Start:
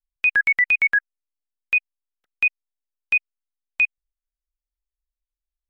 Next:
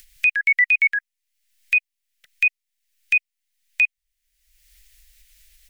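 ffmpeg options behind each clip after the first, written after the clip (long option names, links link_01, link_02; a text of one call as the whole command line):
ffmpeg -i in.wav -af "alimiter=limit=-22dB:level=0:latency=1:release=13,acompressor=mode=upward:threshold=-32dB:ratio=2.5,firequalizer=gain_entry='entry(160,0);entry(250,-20);entry(610,-2);entry(910,-16);entry(1900,11);entry(3700,9)':delay=0.05:min_phase=1" out.wav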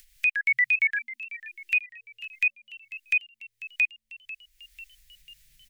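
ffmpeg -i in.wav -filter_complex "[0:a]asplit=6[link_01][link_02][link_03][link_04][link_05][link_06];[link_02]adelay=494,afreqshift=110,volume=-16dB[link_07];[link_03]adelay=988,afreqshift=220,volume=-20.9dB[link_08];[link_04]adelay=1482,afreqshift=330,volume=-25.8dB[link_09];[link_05]adelay=1976,afreqshift=440,volume=-30.6dB[link_10];[link_06]adelay=2470,afreqshift=550,volume=-35.5dB[link_11];[link_01][link_07][link_08][link_09][link_10][link_11]amix=inputs=6:normalize=0,volume=-5.5dB" out.wav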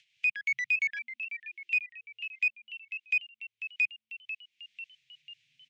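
ffmpeg -i in.wav -filter_complex "[0:a]aeval=exprs='(tanh(14.1*val(0)+0.15)-tanh(0.15))/14.1':channel_layout=same,highpass=frequency=120:width=0.5412,highpass=frequency=120:width=1.3066,equalizer=frequency=190:width_type=q:width=4:gain=5,equalizer=frequency=590:width_type=q:width=4:gain=-9,equalizer=frequency=1100:width_type=q:width=4:gain=-9,equalizer=frequency=1900:width_type=q:width=4:gain=-5,lowpass=frequency=5700:width=0.5412,lowpass=frequency=5700:width=1.3066,acrossover=split=240|3500[link_01][link_02][link_03];[link_02]aexciter=amount=4.4:drive=6.1:freq=2100[link_04];[link_01][link_04][link_03]amix=inputs=3:normalize=0,volume=-8dB" out.wav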